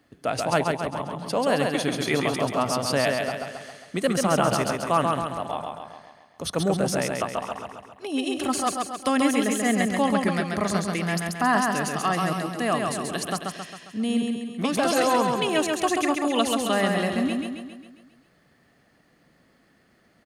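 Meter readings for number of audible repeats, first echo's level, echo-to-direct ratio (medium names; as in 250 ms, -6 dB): 6, -3.5 dB, -2.0 dB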